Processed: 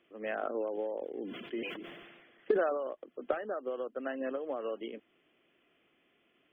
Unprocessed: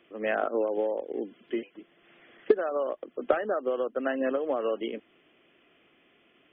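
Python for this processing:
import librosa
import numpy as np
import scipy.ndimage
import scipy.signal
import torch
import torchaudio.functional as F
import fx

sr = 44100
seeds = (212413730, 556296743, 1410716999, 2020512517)

y = fx.sustainer(x, sr, db_per_s=38.0, at=(0.42, 2.88))
y = F.gain(torch.from_numpy(y), -8.0).numpy()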